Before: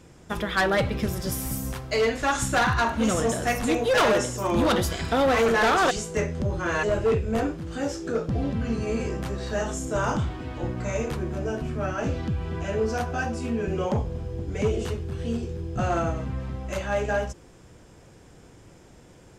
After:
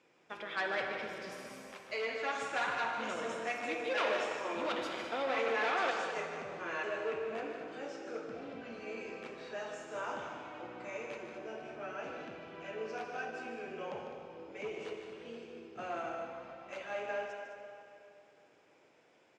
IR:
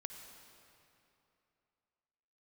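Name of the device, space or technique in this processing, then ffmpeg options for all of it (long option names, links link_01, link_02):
station announcement: -filter_complex "[0:a]highpass=410,lowpass=4500,equalizer=frequency=2400:width_type=o:width=0.39:gain=7,aecho=1:1:151.6|207:0.355|0.282[link_01];[1:a]atrim=start_sample=2205[link_02];[link_01][link_02]afir=irnorm=-1:irlink=0,volume=-8.5dB"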